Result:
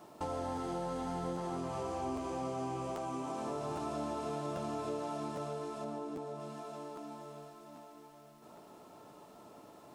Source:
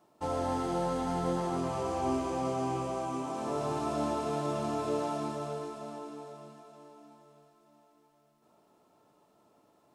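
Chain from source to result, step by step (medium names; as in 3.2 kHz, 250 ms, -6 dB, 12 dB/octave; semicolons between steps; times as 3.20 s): 5.84–6.40 s: tilt shelf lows +3.5 dB; compression 3:1, threshold -53 dBFS, peak gain reduction 19 dB; crackling interface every 0.80 s, samples 512, repeat, from 0.55 s; trim +11 dB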